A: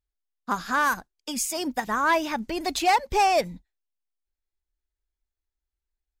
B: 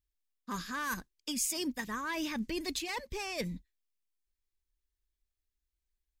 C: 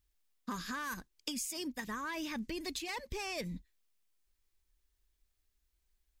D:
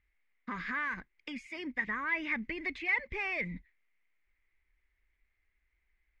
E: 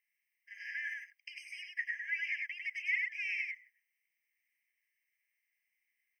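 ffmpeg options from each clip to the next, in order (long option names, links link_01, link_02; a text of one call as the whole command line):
ffmpeg -i in.wav -af "bandreject=frequency=1400:width=7.1,areverse,acompressor=threshold=-29dB:ratio=6,areverse,equalizer=frequency=750:width=1.7:gain=-15" out.wav
ffmpeg -i in.wav -af "acompressor=threshold=-44dB:ratio=10,volume=7.5dB" out.wav
ffmpeg -i in.wav -filter_complex "[0:a]asplit=2[link_01][link_02];[link_02]alimiter=level_in=9dB:limit=-24dB:level=0:latency=1:release=24,volume=-9dB,volume=3dB[link_03];[link_01][link_03]amix=inputs=2:normalize=0,lowpass=frequency=2100:width_type=q:width=9.1,volume=-7.5dB" out.wav
ffmpeg -i in.wav -af "aecho=1:1:100:0.708,crystalizer=i=3.5:c=0,afftfilt=real='re*eq(mod(floor(b*sr/1024/1600),2),1)':imag='im*eq(mod(floor(b*sr/1024/1600),2),1)':win_size=1024:overlap=0.75,volume=-7dB" out.wav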